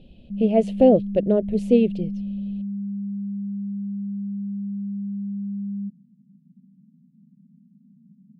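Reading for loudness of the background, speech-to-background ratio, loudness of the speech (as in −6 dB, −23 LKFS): −30.0 LKFS, 10.0 dB, −20.0 LKFS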